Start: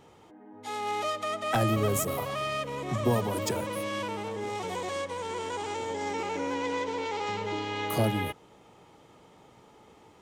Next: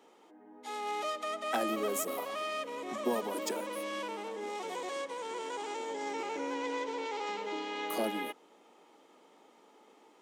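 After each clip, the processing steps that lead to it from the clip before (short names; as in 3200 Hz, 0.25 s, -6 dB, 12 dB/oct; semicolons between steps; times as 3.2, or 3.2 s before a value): steep high-pass 230 Hz 36 dB/oct; gain -4.5 dB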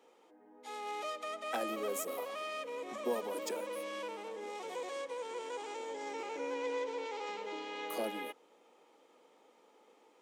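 low shelf 260 Hz -5 dB; small resonant body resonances 500/2400 Hz, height 8 dB; gain -4.5 dB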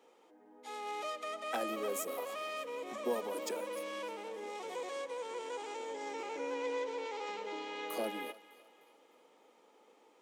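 thinning echo 0.303 s, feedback 45%, high-pass 670 Hz, level -17 dB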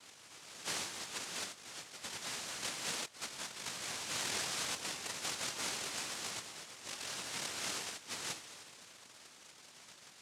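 negative-ratio compressor -44 dBFS, ratio -0.5; noise vocoder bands 1; gain +2.5 dB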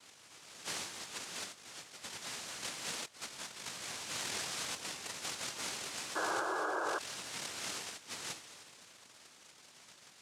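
painted sound noise, 6.15–6.99, 300–1700 Hz -34 dBFS; gain -1.5 dB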